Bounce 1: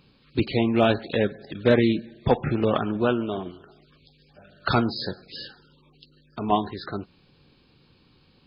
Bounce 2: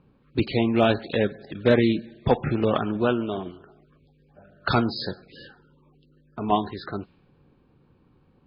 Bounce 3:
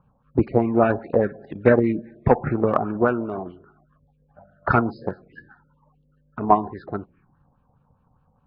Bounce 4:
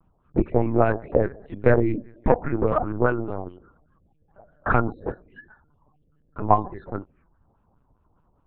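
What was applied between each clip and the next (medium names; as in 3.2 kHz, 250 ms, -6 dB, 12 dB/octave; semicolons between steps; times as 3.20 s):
level-controlled noise filter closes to 1.2 kHz, open at -21.5 dBFS
touch-sensitive phaser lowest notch 330 Hz, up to 3.3 kHz, full sweep at -26 dBFS; LFO low-pass sine 4.9 Hz 730–2200 Hz; transient shaper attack +6 dB, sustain +1 dB; trim -1 dB
LPC vocoder at 8 kHz pitch kept; trim -1 dB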